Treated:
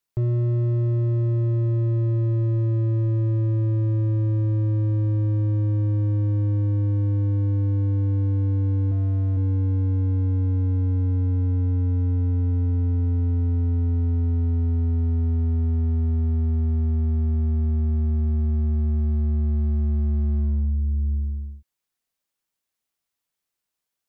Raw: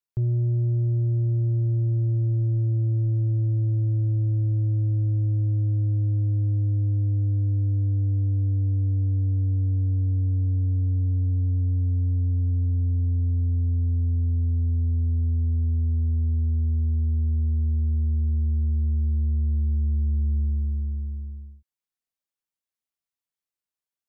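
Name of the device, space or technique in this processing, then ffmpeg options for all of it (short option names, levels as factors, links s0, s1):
clipper into limiter: -filter_complex "[0:a]asettb=1/sr,asplit=3[s0][s1][s2];[s0]atrim=end=8.914[s3];[s1]atrim=start=8.91:end=9.37,asetpts=PTS-STARTPTS,afade=t=in:d=0.004:c=qsin,afade=t=out:st=0.456:d=0.004:c=qsin,highpass=f=44:p=1[s4];[s2]atrim=start=9.366[s5];[s3][s4]acrossfade=d=0.004:c1=hsin:c2=qsin[s6];[s6][s5]acrossfade=d=0.004:c1=qsin:c2=hsin,asoftclip=type=hard:threshold=0.0668,alimiter=level_in=1.58:limit=0.0631:level=0:latency=1:release=50,volume=0.631,volume=2.51"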